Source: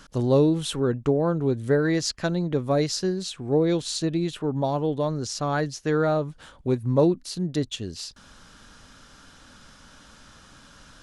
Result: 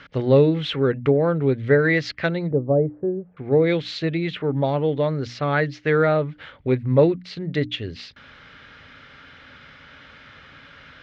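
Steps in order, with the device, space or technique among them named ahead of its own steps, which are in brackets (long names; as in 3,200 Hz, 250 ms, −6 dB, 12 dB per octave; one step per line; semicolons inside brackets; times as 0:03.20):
guitar cabinet (loudspeaker in its box 83–3,500 Hz, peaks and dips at 200 Hz −10 dB, 330 Hz −6 dB, 720 Hz −5 dB, 1,000 Hz −7 dB, 2,100 Hz +10 dB)
mains-hum notches 60/120/180/240/300 Hz
0:02.51–0:03.37: inverse Chebyshev low-pass filter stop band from 3,400 Hz, stop band 70 dB
level +6.5 dB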